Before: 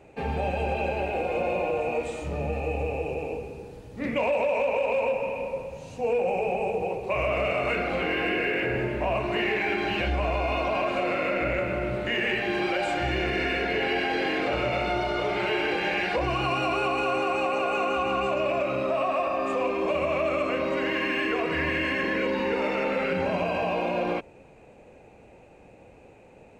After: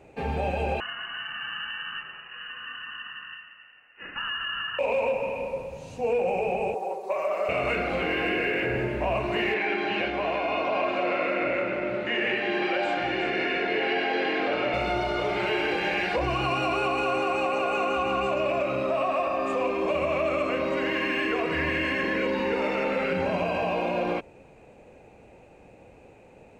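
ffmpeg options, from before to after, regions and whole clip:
-filter_complex "[0:a]asettb=1/sr,asplit=3[a][b][c];[a]atrim=end=0.804[d];[b]atrim=start=0.8:end=4.79,asetpts=PTS-STARTPTS,afade=t=in:d=0.004:c=qsin,afade=t=out:st=3.986:d=0.004:c=qsin,highpass=670,aeval=exprs='val(0)*sin(2*PI*720*n/s)':c=same,lowpass=f=2.6k:t=q:w=0.5098,lowpass=f=2.6k:t=q:w=0.6013,lowpass=f=2.6k:t=q:w=0.9,lowpass=f=2.6k:t=q:w=2.563,afreqshift=-3000[e];[c]atrim=start=4.786[f];[d][e]acrossfade=d=0.004:c1=hsin:c2=qsin[g];[g][f]acrossfade=d=0.004:c1=qsin:c2=hsin,asettb=1/sr,asplit=3[h][i][j];[h]atrim=end=6.744[k];[i]atrim=start=6.74:end=7.49,asetpts=PTS-STARTPTS,afade=t=in:d=0.004:c=qsin,afade=t=out:st=0.746:d=0.004:c=qsin,highpass=560,equalizer=f=2.6k:w=1.5:g=-14.5,aecho=1:1:5.2:0.81,atrim=end_sample=33075[l];[j]atrim=start=7.486[m];[k][l]acrossfade=d=0.004:c1=hsin:c2=qsin[n];[n][m]acrossfade=d=0.004:c1=qsin:c2=hsin,asettb=1/sr,asplit=3[o][p][q];[o]atrim=end=9.544[r];[p]atrim=start=9.54:end=14.74,asetpts=PTS-STARTPTS,afade=t=in:d=0.004:c=qsin,afade=t=out:st=5.196:d=0.004:c=qsin,highpass=210,lowpass=4.5k,aecho=1:1:361:0.335,atrim=end_sample=229320[s];[q]atrim=start=14.736[t];[r][s]acrossfade=d=0.004:c1=hsin:c2=qsin[u];[u][t]acrossfade=d=0.004:c1=qsin:c2=hsin"

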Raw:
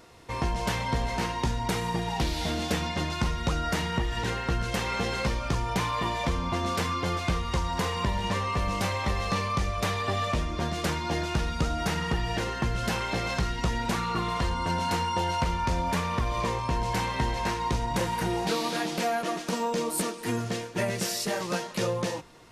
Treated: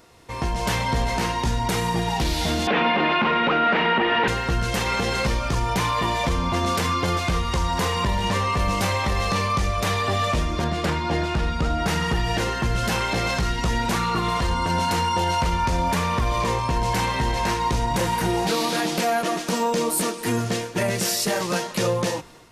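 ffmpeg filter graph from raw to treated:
-filter_complex "[0:a]asettb=1/sr,asplit=3[a][b][c];[a]atrim=end=2.674[d];[b]atrim=start=2.67:end=4.28,asetpts=PTS-STARTPTS,afade=t=in:d=0.004:c=qsin,afade=t=out:st=1.606:d=0.004:c=qsin,asplit=2[e][f];[f]highpass=f=720:p=1,volume=23dB,asoftclip=type=tanh:threshold=-14dB[g];[e][g]amix=inputs=2:normalize=0,lowpass=f=1.8k:p=1,volume=-6dB,highpass=200,equalizer=f=220:t=q:w=4:g=9,equalizer=f=410:t=q:w=4:g=4,equalizer=f=2.5k:t=q:w=4:g=3,lowpass=f=3.2k:w=0.5412,lowpass=f=3.2k:w=1.3066[h];[c]atrim=start=4.276[i];[d][h]acrossfade=d=0.004:c1=hsin:c2=qsin[j];[j][i]acrossfade=d=0.004:c1=qsin:c2=hsin,asettb=1/sr,asplit=3[k][l][m];[k]atrim=end=10.644[n];[l]atrim=start=10.64:end=11.88,asetpts=PTS-STARTPTS,afade=t=in:d=0.004:c=qsin,afade=t=out:st=1.236:d=0.004:c=qsin,aemphasis=mode=reproduction:type=50kf,bandreject=f=6.1k:w=15[o];[m]atrim=start=11.876[p];[n][o]acrossfade=d=0.004:c1=hsin:c2=qsin[q];[q][p]acrossfade=d=0.004:c1=qsin:c2=hsin,highshelf=f=8.9k:g=5,dynaudnorm=f=360:g=3:m=6.5dB,alimiter=limit=-13.5dB:level=0:latency=1:release=20"

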